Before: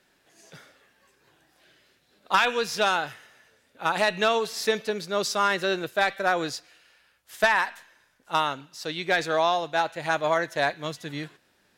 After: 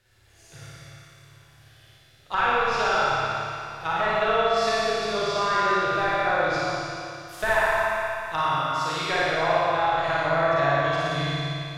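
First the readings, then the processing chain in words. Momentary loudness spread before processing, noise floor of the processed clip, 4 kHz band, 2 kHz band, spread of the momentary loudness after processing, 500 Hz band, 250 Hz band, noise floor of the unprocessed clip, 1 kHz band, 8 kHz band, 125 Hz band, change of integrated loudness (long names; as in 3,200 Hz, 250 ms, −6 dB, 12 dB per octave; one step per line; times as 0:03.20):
11 LU, −55 dBFS, 0.0 dB, +2.0 dB, 8 LU, +2.5 dB, +1.0 dB, −66 dBFS, +3.5 dB, −3.0 dB, +9.0 dB, +2.0 dB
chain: low shelf with overshoot 140 Hz +12 dB, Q 3
treble cut that deepens with the level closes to 1,700 Hz, closed at −21.5 dBFS
parametric band 670 Hz −3.5 dB 1.8 octaves
flutter between parallel walls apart 9.7 metres, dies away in 1.1 s
four-comb reverb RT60 2.7 s, combs from 29 ms, DRR −6 dB
level −3 dB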